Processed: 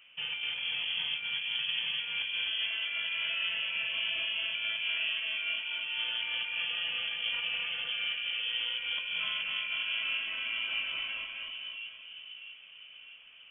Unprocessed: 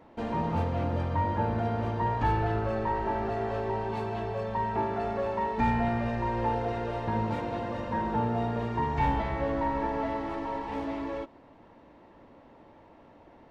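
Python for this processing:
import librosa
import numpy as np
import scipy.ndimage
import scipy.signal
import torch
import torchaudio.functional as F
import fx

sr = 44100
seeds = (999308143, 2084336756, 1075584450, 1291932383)

p1 = fx.low_shelf(x, sr, hz=60.0, db=-12.0)
p2 = fx.over_compress(p1, sr, threshold_db=-31.0, ratio=-0.5)
p3 = p2 + fx.echo_split(p2, sr, split_hz=670.0, low_ms=647, high_ms=255, feedback_pct=52, wet_db=-3.5, dry=0)
p4 = fx.freq_invert(p3, sr, carrier_hz=3300)
y = p4 * librosa.db_to_amplitude(-4.5)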